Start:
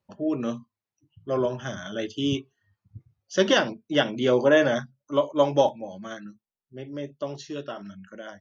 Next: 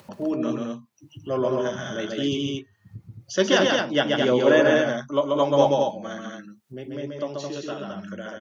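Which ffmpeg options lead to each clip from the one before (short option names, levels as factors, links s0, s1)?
-filter_complex "[0:a]highpass=110,acompressor=mode=upward:threshold=0.0282:ratio=2.5,asplit=2[s0][s1];[s1]aecho=0:1:134.1|218.7:0.708|0.631[s2];[s0][s2]amix=inputs=2:normalize=0"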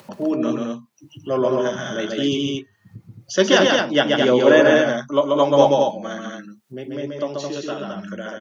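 -af "highpass=130,volume=1.68"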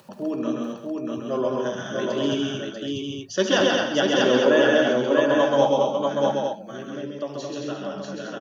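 -filter_complex "[0:a]bandreject=f=2100:w=7.1,asplit=2[s0][s1];[s1]aecho=0:1:72|130|641:0.282|0.398|0.708[s2];[s0][s2]amix=inputs=2:normalize=0,volume=0.531"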